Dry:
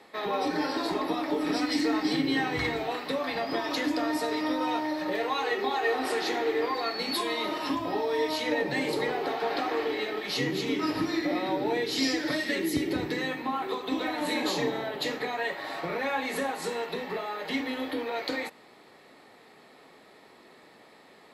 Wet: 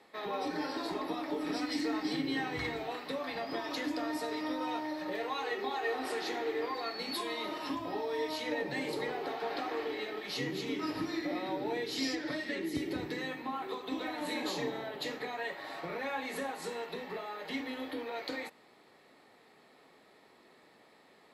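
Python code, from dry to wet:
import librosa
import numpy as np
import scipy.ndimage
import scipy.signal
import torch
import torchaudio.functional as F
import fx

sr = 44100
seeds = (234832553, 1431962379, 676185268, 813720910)

y = fx.high_shelf(x, sr, hz=6000.0, db=-10.0, at=(12.15, 12.75))
y = y * librosa.db_to_amplitude(-7.0)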